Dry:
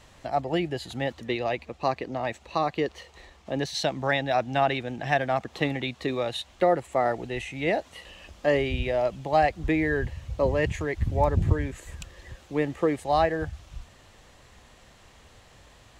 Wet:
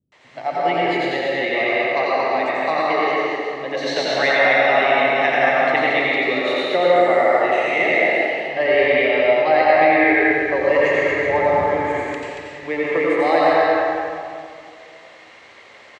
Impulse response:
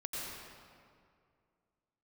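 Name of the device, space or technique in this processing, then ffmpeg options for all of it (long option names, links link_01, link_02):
station announcement: -filter_complex "[0:a]asettb=1/sr,asplit=3[link_01][link_02][link_03];[link_01]atrim=end=8.054[link_04];[link_02]atrim=start=8.05:end=10.01,asetpts=PTS-STARTPTS,afade=type=in:duration=0.004:curve=qsin,afade=type=out:start_time=1.956:duration=0.004:curve=qsin,lowpass=frequency=5400:width=0.5412,lowpass=frequency=5400:width=1.3066[link_05];[link_03]atrim=start=10.006[link_06];[link_04][link_05]acrossfade=duration=0.004:curve1=hsin:curve2=qsin[link_07];[link_07][link_06]acrossfade=duration=0.004:curve1=qsin:curve2=hsin,highpass=330,lowpass=4700,equalizer=frequency=2100:width_type=o:width=0.24:gain=10.5,acrossover=split=210[link_08][link_09];[link_09]adelay=120[link_10];[link_08][link_10]amix=inputs=2:normalize=0,aecho=1:1:87.46|230.3:0.562|0.631[link_11];[1:a]atrim=start_sample=2205[link_12];[link_11][link_12]afir=irnorm=-1:irlink=0,volume=6dB"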